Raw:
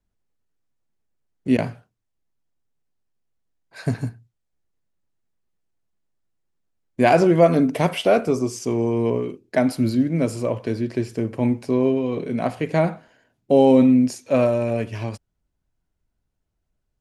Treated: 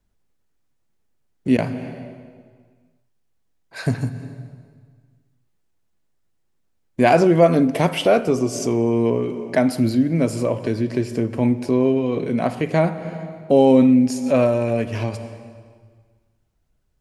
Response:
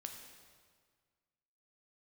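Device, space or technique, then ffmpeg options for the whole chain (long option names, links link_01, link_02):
ducked reverb: -filter_complex "[0:a]asplit=3[link_01][link_02][link_03];[1:a]atrim=start_sample=2205[link_04];[link_02][link_04]afir=irnorm=-1:irlink=0[link_05];[link_03]apad=whole_len=749861[link_06];[link_05][link_06]sidechaincompress=threshold=-30dB:ratio=8:attack=7.3:release=202,volume=5.5dB[link_07];[link_01][link_07]amix=inputs=2:normalize=0"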